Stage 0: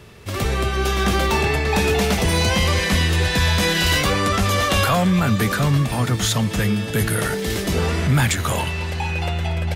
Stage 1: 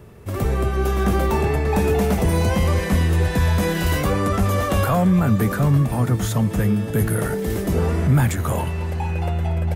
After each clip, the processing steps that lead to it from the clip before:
parametric band 3,900 Hz −14.5 dB 2.5 octaves
level +1.5 dB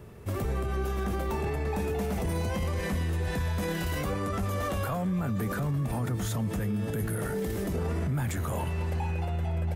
brickwall limiter −19.5 dBFS, peak gain reduction 11 dB
level −3.5 dB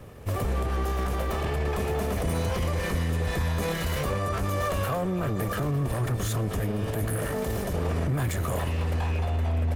lower of the sound and its delayed copy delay 1.7 ms
level +4 dB

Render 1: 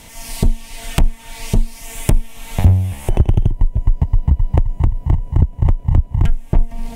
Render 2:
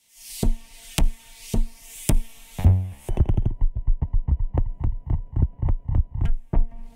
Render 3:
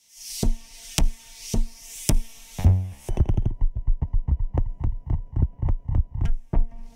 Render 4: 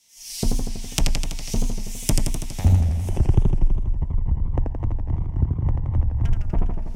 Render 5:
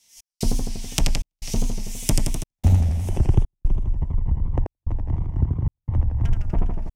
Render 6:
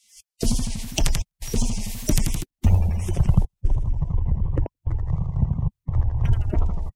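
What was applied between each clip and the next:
multiband upward and downward expander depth 100%; level −8 dB
parametric band 5,700 Hz +10 dB 0.54 octaves; level −1 dB
feedback echo with a swinging delay time 82 ms, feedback 72%, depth 162 cents, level −4 dB
gate pattern "x.xxxx.xxxx" 74 BPM −60 dB
spectral magnitudes quantised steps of 30 dB

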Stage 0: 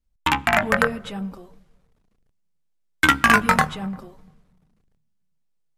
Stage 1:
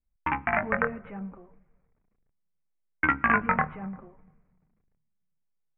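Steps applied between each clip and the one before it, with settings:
elliptic low-pass filter 2,300 Hz, stop band 50 dB
level −6.5 dB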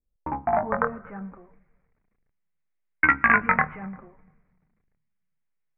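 low-pass filter sweep 450 Hz → 2,100 Hz, 0:00.02–0:01.44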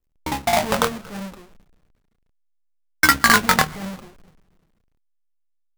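each half-wave held at its own peak
level +1 dB

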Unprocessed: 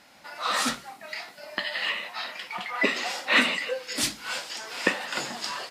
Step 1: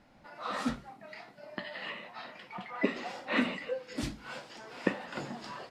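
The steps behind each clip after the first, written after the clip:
spectral tilt −4 dB per octave
level −8 dB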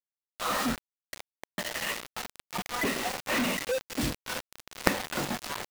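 log-companded quantiser 2 bits
level −1 dB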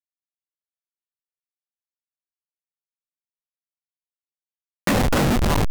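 hold until the input has moved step −20 dBFS
leveller curve on the samples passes 3
pitch vibrato 6.6 Hz 56 cents
level −4 dB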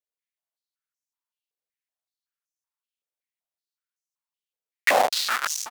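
single-tap delay 343 ms −12 dB
high-pass on a step sequencer 5.3 Hz 470–6,000 Hz
level −1.5 dB

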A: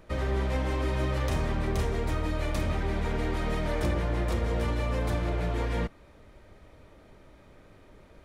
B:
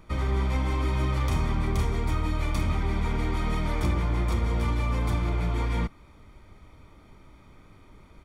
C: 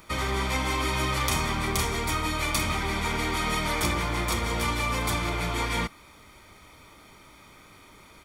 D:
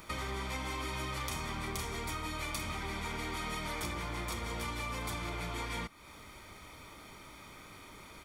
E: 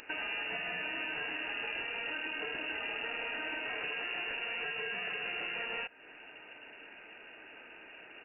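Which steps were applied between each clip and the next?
comb filter 0.9 ms, depth 52%
spectral tilt +3 dB per octave; level +5.5 dB
downward compressor 3 to 1, threshold −39 dBFS, peak gain reduction 13 dB
voice inversion scrambler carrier 2,800 Hz

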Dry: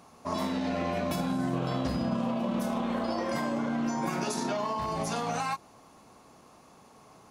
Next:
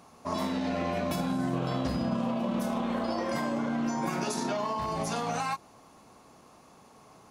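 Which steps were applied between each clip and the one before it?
no processing that can be heard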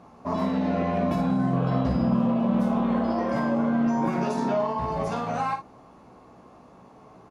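low-pass filter 1,000 Hz 6 dB per octave
on a send: ambience of single reflections 16 ms −6.5 dB, 56 ms −8.5 dB
on the sum: level +5.5 dB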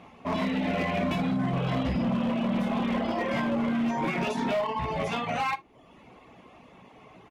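reverb reduction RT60 0.72 s
flat-topped bell 2,600 Hz +12 dB 1.1 octaves
gain into a clipping stage and back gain 23 dB

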